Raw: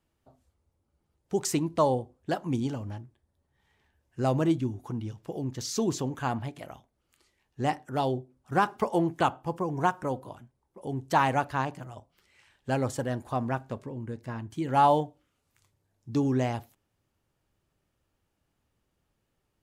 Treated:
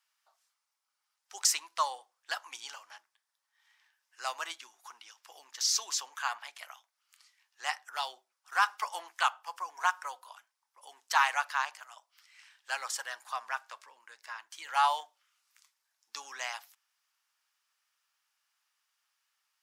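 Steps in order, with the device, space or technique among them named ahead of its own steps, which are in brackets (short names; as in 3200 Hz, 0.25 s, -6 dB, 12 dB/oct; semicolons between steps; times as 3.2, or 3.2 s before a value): headphones lying on a table (HPF 1100 Hz 24 dB/oct; bell 5300 Hz +6 dB 0.51 oct); gain +3.5 dB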